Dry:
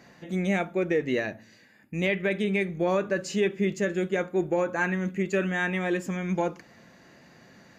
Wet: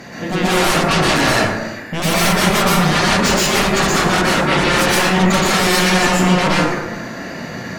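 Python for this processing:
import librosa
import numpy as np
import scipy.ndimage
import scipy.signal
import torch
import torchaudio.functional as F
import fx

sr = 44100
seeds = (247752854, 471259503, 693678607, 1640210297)

y = fx.highpass(x, sr, hz=83.0, slope=12, at=(2.0, 2.61))
y = fx.fold_sine(y, sr, drive_db=19, ceiling_db=-13.5)
y = fx.rev_plate(y, sr, seeds[0], rt60_s=1.1, hf_ratio=0.45, predelay_ms=105, drr_db=-7.0)
y = y * librosa.db_to_amplitude(-5.0)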